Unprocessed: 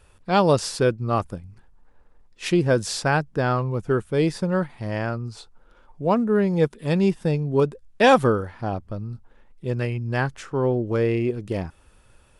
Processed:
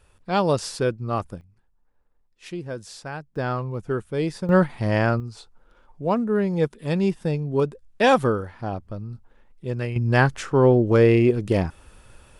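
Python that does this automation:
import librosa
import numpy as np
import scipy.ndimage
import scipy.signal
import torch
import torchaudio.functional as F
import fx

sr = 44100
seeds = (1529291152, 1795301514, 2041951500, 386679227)

y = fx.gain(x, sr, db=fx.steps((0.0, -3.0), (1.41, -13.0), (3.36, -4.0), (4.49, 6.0), (5.2, -2.0), (9.96, 6.0)))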